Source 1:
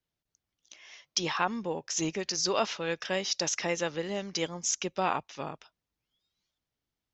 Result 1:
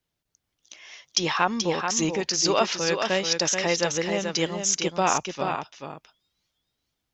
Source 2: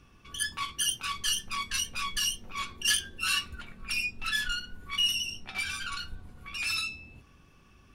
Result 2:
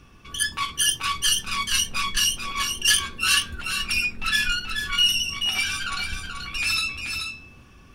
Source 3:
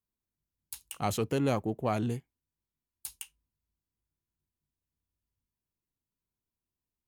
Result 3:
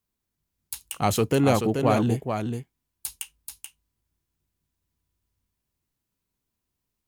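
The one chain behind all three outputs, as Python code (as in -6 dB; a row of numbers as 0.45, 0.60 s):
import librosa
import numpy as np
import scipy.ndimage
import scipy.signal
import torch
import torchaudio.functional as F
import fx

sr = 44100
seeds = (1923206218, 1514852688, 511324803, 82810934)

y = x + 10.0 ** (-6.0 / 20.0) * np.pad(x, (int(432 * sr / 1000.0), 0))[:len(x)]
y = librosa.util.normalize(y) * 10.0 ** (-6 / 20.0)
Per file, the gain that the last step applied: +6.0, +7.0, +7.5 dB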